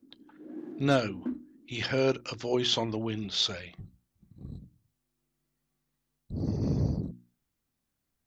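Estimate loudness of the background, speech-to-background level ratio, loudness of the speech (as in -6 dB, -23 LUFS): -42.0 LUFS, 12.0 dB, -30.0 LUFS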